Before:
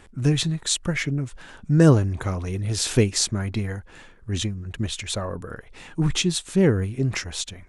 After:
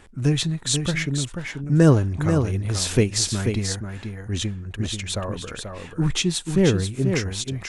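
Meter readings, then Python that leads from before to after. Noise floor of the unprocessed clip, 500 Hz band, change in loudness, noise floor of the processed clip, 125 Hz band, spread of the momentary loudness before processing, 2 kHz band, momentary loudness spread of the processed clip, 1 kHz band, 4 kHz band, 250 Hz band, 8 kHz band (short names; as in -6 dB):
-48 dBFS, +1.0 dB, +0.5 dB, -42 dBFS, +1.0 dB, 16 LU, +1.0 dB, 12 LU, +1.0 dB, +1.0 dB, +1.0 dB, +1.0 dB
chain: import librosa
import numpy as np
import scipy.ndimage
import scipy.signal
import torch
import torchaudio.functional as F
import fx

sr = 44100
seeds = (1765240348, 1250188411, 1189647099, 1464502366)

y = x + 10.0 ** (-6.5 / 20.0) * np.pad(x, (int(486 * sr / 1000.0), 0))[:len(x)]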